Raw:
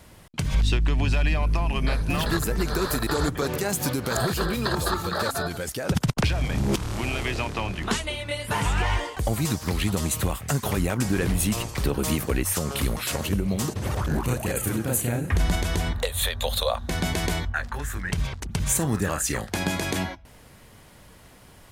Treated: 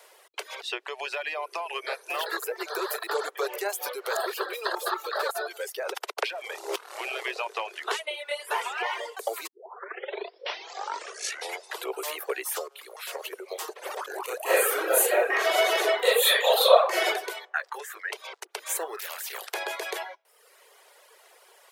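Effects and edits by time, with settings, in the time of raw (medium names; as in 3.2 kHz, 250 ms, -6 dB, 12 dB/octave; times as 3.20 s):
9.47 s: tape start 2.70 s
12.68–13.52 s: fade in linear, from -16 dB
14.43–17.05 s: reverb throw, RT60 0.88 s, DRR -11 dB
18.99–19.54 s: spectrum-flattening compressor 4:1
whole clip: steep high-pass 390 Hz 72 dB/octave; reverb removal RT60 0.87 s; dynamic bell 7.3 kHz, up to -8 dB, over -45 dBFS, Q 0.81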